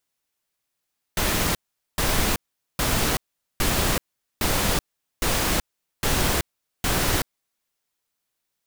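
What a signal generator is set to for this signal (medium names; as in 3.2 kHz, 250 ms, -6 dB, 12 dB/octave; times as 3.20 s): noise bursts pink, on 0.38 s, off 0.43 s, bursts 8, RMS -22 dBFS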